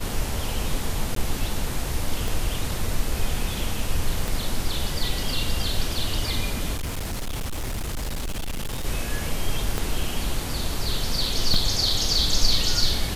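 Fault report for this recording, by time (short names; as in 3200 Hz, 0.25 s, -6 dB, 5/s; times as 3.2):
1.15–1.16 gap 13 ms
2.28 pop
4.28 pop
6.74–8.85 clipped -25 dBFS
9.78 pop -11 dBFS
11.54 gap 2.3 ms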